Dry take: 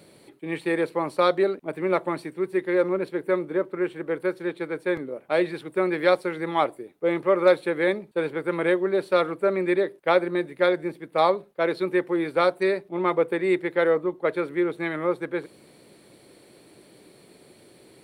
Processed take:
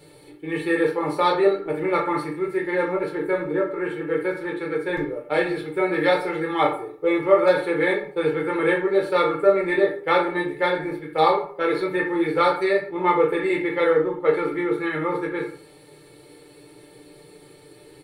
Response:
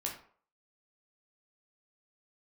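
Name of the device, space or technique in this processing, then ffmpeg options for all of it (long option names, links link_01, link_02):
microphone above a desk: -filter_complex "[0:a]aecho=1:1:2.3:0.58[link_01];[1:a]atrim=start_sample=2205[link_02];[link_01][link_02]afir=irnorm=-1:irlink=0,lowshelf=frequency=89:gain=8,aecho=1:1:6.7:0.57"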